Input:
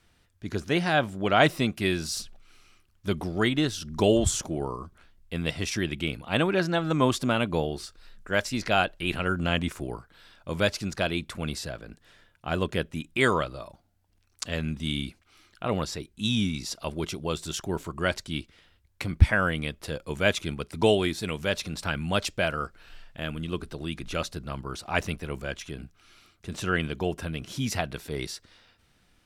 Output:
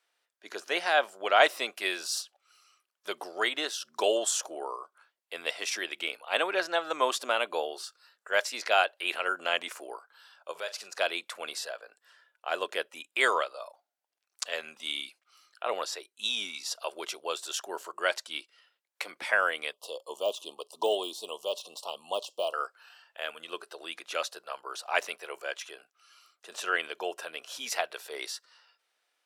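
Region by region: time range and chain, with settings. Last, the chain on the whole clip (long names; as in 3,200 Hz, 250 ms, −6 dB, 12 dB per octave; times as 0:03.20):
0:10.51–0:10.99: downward compressor 2.5 to 1, threshold −34 dBFS + double-tracking delay 42 ms −14 dB
0:19.73–0:22.54: de-essing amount 85% + elliptic band-stop filter 1,100–2,900 Hz
whole clip: high-pass filter 490 Hz 24 dB per octave; noise reduction from a noise print of the clip's start 9 dB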